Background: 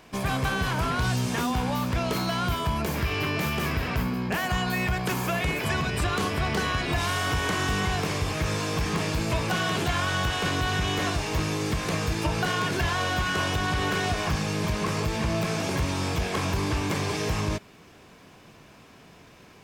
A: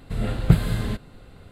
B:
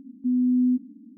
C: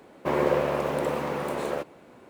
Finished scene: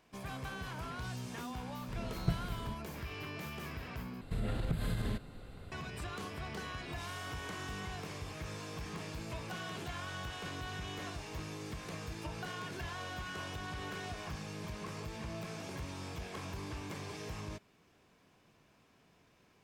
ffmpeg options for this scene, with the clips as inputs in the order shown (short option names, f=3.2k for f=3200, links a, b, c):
-filter_complex "[1:a]asplit=2[a][b];[0:a]volume=-16dB[c];[b]acompressor=threshold=-27dB:ratio=6:attack=3.2:release=140:knee=1:detection=peak[d];[c]asplit=2[e][f];[e]atrim=end=4.214[g];[d]atrim=end=1.51,asetpts=PTS-STARTPTS,volume=-3.5dB[h];[f]atrim=start=5.716[i];[a]atrim=end=1.51,asetpts=PTS-STARTPTS,volume=-17dB,afade=t=in:d=0.004:c=hsin,afade=t=out:st=1.506:d=0.004:c=hsin,adelay=1780[j];[g][h]acrossfade=d=0.004:c1=hsin:c2=hsin[k];[k][i]acrossfade=d=0.004:c1=hsin:c2=hsin[l];[l][j]amix=inputs=2:normalize=0"